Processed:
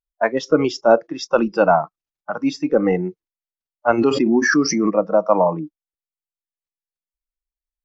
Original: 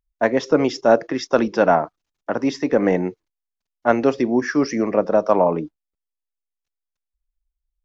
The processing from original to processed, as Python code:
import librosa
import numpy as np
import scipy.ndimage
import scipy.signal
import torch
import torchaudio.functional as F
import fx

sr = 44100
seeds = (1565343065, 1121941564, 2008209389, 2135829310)

y = fx.noise_reduce_blind(x, sr, reduce_db=16)
y = fx.pre_swell(y, sr, db_per_s=34.0, at=(3.97, 4.89), fade=0.02)
y = y * librosa.db_to_amplitude(1.5)